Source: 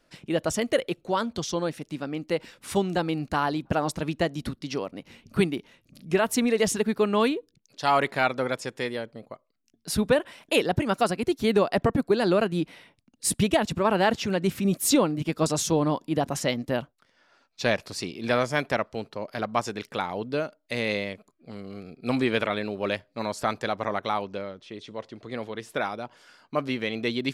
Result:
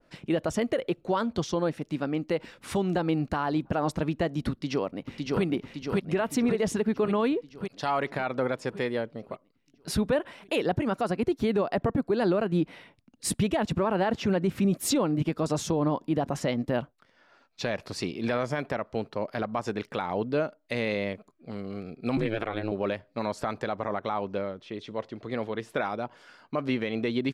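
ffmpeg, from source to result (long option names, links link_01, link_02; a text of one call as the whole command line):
ffmpeg -i in.wav -filter_complex "[0:a]asplit=2[link_01][link_02];[link_02]afade=type=in:start_time=4.51:duration=0.01,afade=type=out:start_time=5.43:duration=0.01,aecho=0:1:560|1120|1680|2240|2800|3360|3920|4480|5040:0.794328|0.476597|0.285958|0.171575|0.102945|0.061767|0.0370602|0.0222361|0.0133417[link_03];[link_01][link_03]amix=inputs=2:normalize=0,asettb=1/sr,asplit=3[link_04][link_05][link_06];[link_04]atrim=end=22.174[link_07];[link_05]atrim=start=22.17:end=22.72,asetpts=PTS-STARTPTS,afade=type=in:duration=0.004:curve=qsin,afade=type=out:start_time=0.546:duration=0.004:curve=qsin,aeval=exprs='val(0)*sin(2*PI*110*n/s)':channel_layout=same[link_08];[link_06]atrim=start=22.716[link_09];[link_07][link_08]acrossfade=duration=0.004:curve1=hsin:curve2=qsin[link_10];[link_10][link_09]acrossfade=duration=0.004:curve1=qsin:curve2=hsin,highshelf=frequency=4400:gain=-10,alimiter=limit=-20dB:level=0:latency=1:release=102,adynamicequalizer=threshold=0.00708:dfrequency=1700:dqfactor=0.7:tfrequency=1700:tqfactor=0.7:attack=5:release=100:ratio=0.375:range=2.5:mode=cutabove:tftype=highshelf,volume=3dB" out.wav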